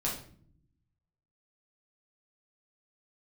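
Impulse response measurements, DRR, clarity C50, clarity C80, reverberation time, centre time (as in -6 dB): -5.0 dB, 5.5 dB, 10.0 dB, not exponential, 32 ms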